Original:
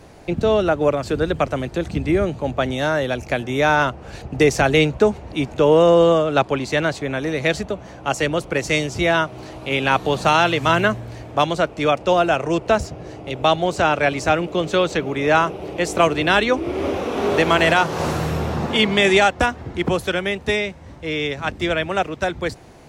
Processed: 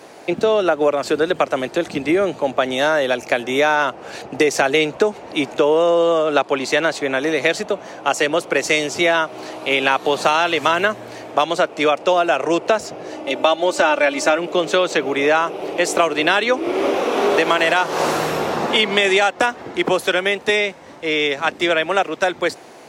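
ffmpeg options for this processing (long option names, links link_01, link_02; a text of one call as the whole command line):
ffmpeg -i in.wav -filter_complex "[0:a]asettb=1/sr,asplit=3[link_01][link_02][link_03];[link_01]atrim=end=13.124[link_04];[link_02]atrim=start=13.12:end=14.38,asetpts=PTS-STARTPTS,afade=type=in:duration=0.004:curve=qsin,afade=type=out:start_time=1.256:duration=0.004:curve=qsin,aecho=1:1:3.4:0.65,atrim=end_sample=55566[link_05];[link_03]atrim=start=14.376[link_06];[link_04][link_05]acrossfade=duration=0.004:curve1=hsin:curve2=qsin[link_07];[link_07][link_06]acrossfade=duration=0.004:curve1=qsin:curve2=hsin,highpass=340,acompressor=threshold=-19dB:ratio=5,volume=6.5dB" out.wav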